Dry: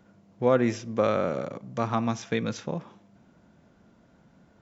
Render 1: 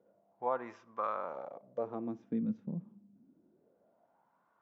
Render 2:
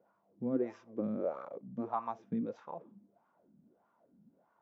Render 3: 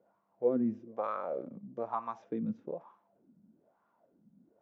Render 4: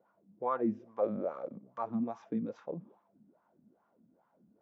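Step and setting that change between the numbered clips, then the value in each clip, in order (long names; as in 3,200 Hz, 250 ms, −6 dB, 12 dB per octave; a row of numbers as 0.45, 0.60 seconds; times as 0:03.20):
LFO wah, speed: 0.27, 1.6, 1.1, 2.4 Hertz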